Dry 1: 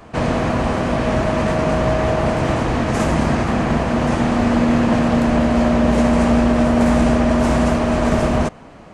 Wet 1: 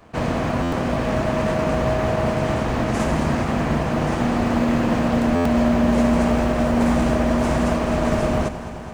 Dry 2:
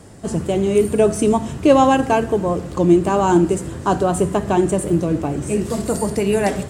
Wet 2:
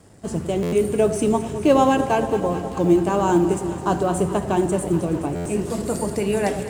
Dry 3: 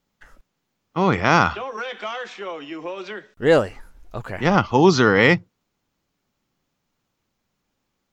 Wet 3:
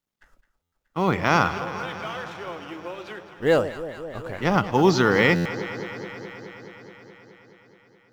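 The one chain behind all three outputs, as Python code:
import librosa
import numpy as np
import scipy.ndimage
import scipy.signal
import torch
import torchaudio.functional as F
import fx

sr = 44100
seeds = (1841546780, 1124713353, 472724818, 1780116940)

y = fx.law_mismatch(x, sr, coded='A')
y = fx.echo_alternate(y, sr, ms=106, hz=850.0, feedback_pct=87, wet_db=-12)
y = fx.buffer_glitch(y, sr, at_s=(0.62, 5.35), block=512, repeats=8)
y = F.gain(torch.from_numpy(y), -3.5).numpy()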